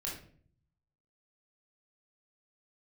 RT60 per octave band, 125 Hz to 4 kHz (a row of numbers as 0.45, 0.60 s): 1.1, 0.80, 0.60, 0.45, 0.45, 0.35 s